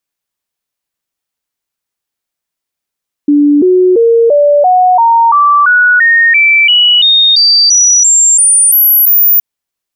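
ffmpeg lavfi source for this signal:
-f lavfi -i "aevalsrc='0.668*clip(min(mod(t,0.34),0.34-mod(t,0.34))/0.005,0,1)*sin(2*PI*291*pow(2,floor(t/0.34)/3)*mod(t,0.34))':d=6.12:s=44100"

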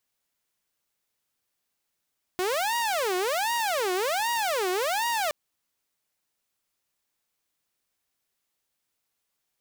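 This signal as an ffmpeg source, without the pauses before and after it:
-f lavfi -i "aevalsrc='0.0794*(2*mod((654.5*t-293.5/(2*PI*1.3)*sin(2*PI*1.3*t)),1)-1)':d=2.92:s=44100"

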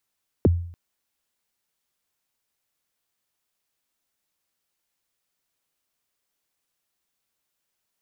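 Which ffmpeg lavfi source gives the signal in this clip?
-f lavfi -i "aevalsrc='0.282*pow(10,-3*t/0.57)*sin(2*PI*(530*0.024/log(86/530)*(exp(log(86/530)*min(t,0.024)/0.024)-1)+86*max(t-0.024,0)))':d=0.29:s=44100"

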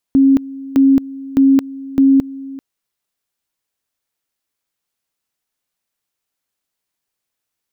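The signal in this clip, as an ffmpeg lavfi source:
-f lavfi -i "aevalsrc='pow(10,(-6.5-19.5*gte(mod(t,0.61),0.22))/20)*sin(2*PI*271*t)':d=2.44:s=44100"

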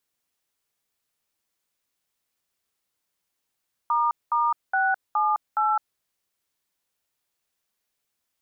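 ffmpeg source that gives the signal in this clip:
-f lavfi -i "aevalsrc='0.0794*clip(min(mod(t,0.417),0.21-mod(t,0.417))/0.002,0,1)*(eq(floor(t/0.417),0)*(sin(2*PI*941*mod(t,0.417))+sin(2*PI*1209*mod(t,0.417)))+eq(floor(t/0.417),1)*(sin(2*PI*941*mod(t,0.417))+sin(2*PI*1209*mod(t,0.417)))+eq(floor(t/0.417),2)*(sin(2*PI*770*mod(t,0.417))+sin(2*PI*1477*mod(t,0.417)))+eq(floor(t/0.417),3)*(sin(2*PI*852*mod(t,0.417))+sin(2*PI*1209*mod(t,0.417)))+eq(floor(t/0.417),4)*(sin(2*PI*852*mod(t,0.417))+sin(2*PI*1336*mod(t,0.417))))':d=2.085:s=44100"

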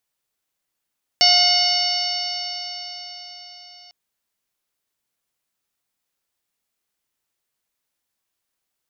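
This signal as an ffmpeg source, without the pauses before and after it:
-f lavfi -i "aevalsrc='0.1*pow(10,-3*t/4.85)*sin(2*PI*713.17*t)+0.0178*pow(10,-3*t/4.85)*sin(2*PI*1433.37*t)+0.075*pow(10,-3*t/4.85)*sin(2*PI*2167.49*t)+0.0944*pow(10,-3*t/4.85)*sin(2*PI*2922.22*t)+0.0473*pow(10,-3*t/4.85)*sin(2*PI*3703.94*t)+0.188*pow(10,-3*t/4.85)*sin(2*PI*4518.64*t)+0.188*pow(10,-3*t/4.85)*sin(2*PI*5371.86*t)+0.0316*pow(10,-3*t/4.85)*sin(2*PI*6268.71*t)':d=2.7:s=44100"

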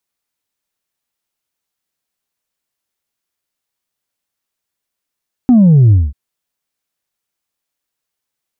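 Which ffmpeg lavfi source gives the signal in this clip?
-f lavfi -i "aevalsrc='0.596*clip((0.64-t)/0.21,0,1)*tanh(1.19*sin(2*PI*260*0.64/log(65/260)*(exp(log(65/260)*t/0.64)-1)))/tanh(1.19)':d=0.64:s=44100"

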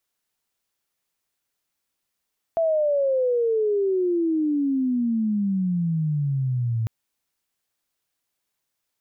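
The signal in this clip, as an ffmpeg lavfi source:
-f lavfi -i "aevalsrc='pow(10,(-18-3*t/4.3)/20)*sin(2*PI*670*4.3/log(110/670)*(exp(log(110/670)*t/4.3)-1))':d=4.3:s=44100"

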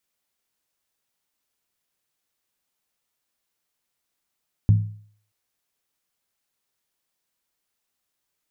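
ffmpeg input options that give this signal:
-f lavfi -i "aevalsrc='0.335*pow(10,-3*t/0.53)*sin(2*PI*105*t)+0.106*pow(10,-3*t/0.42)*sin(2*PI*167.4*t)+0.0335*pow(10,-3*t/0.363)*sin(2*PI*224.3*t)+0.0106*pow(10,-3*t/0.35)*sin(2*PI*241.1*t)+0.00335*pow(10,-3*t/0.325)*sin(2*PI*278.6*t)':d=0.63:s=44100"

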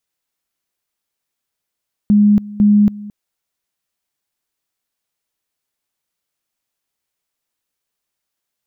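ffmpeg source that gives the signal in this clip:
-f lavfi -i "aevalsrc='pow(10,(-7-20*gte(mod(t,0.5),0.28))/20)*sin(2*PI*207*t)':d=1:s=44100"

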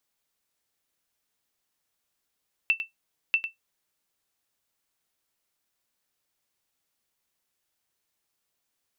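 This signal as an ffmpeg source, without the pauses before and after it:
-f lavfi -i "aevalsrc='0.211*(sin(2*PI*2670*mod(t,0.64))*exp(-6.91*mod(t,0.64)/0.14)+0.316*sin(2*PI*2670*max(mod(t,0.64)-0.1,0))*exp(-6.91*max(mod(t,0.64)-0.1,0)/0.14))':d=1.28:s=44100"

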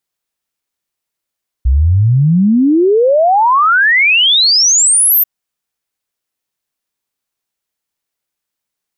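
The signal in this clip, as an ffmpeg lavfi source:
-f lavfi -i "aevalsrc='0.473*clip(min(t,3.59-t)/0.01,0,1)*sin(2*PI*60*3.59/log(14000/60)*(exp(log(14000/60)*t/3.59)-1))':d=3.59:s=44100"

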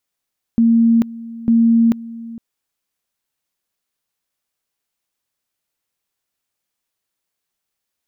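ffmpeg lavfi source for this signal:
-f lavfi -i "aevalsrc='pow(10,(-9-19*gte(mod(t,0.9),0.44))/20)*sin(2*PI*230*t)':d=1.8:s=44100"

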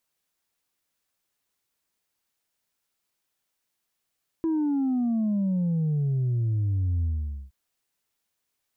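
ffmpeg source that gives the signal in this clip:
-f lavfi -i "aevalsrc='0.075*clip((3.07-t)/0.48,0,1)*tanh(1.19*sin(2*PI*330*3.07/log(65/330)*(exp(log(65/330)*t/3.07)-1)))/tanh(1.19)':d=3.07:s=44100"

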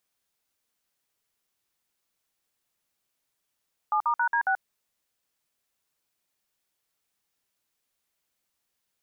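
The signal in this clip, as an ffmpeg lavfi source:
-f lavfi -i "aevalsrc='0.0631*clip(min(mod(t,0.137),0.083-mod(t,0.137))/0.002,0,1)*(eq(floor(t/0.137),0)*(sin(2*PI*852*mod(t,0.137))+sin(2*PI*1209*mod(t,0.137)))+eq(floor(t/0.137),1)*(sin(2*PI*941*mod(t,0.137))+sin(2*PI*1209*mod(t,0.137)))+eq(floor(t/0.137),2)*(sin(2*PI*941*mod(t,0.137))+sin(2*PI*1477*mod(t,0.137)))+eq(floor(t/0.137),3)*(sin(2*PI*941*mod(t,0.137))+sin(2*PI*1633*mod(t,0.137)))+eq(floor(t/0.137),4)*(sin(2*PI*770*mod(t,0.137))+sin(2*PI*1477*mod(t,0.137))))':d=0.685:s=44100"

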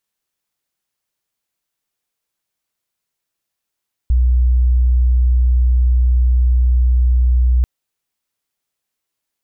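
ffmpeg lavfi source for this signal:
-f lavfi -i "sine=f=61.7:d=3.54:r=44100,volume=8.56dB"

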